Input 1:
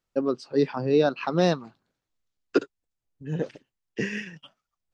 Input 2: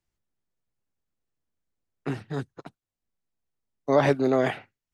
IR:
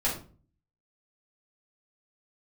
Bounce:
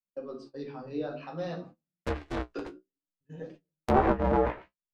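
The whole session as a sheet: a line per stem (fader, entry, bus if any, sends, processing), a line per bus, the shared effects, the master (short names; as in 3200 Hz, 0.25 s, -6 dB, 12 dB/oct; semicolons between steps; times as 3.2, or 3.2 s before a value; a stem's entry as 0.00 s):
-16.5 dB, 0.00 s, send -4 dB, dry
+2.0 dB, 0.00 s, no send, polarity switched at an audio rate 190 Hz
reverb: on, RT60 0.40 s, pre-delay 4 ms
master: gate -43 dBFS, range -24 dB; treble ducked by the level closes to 1200 Hz, closed at -20.5 dBFS; flange 0.57 Hz, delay 9.5 ms, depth 8.4 ms, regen +40%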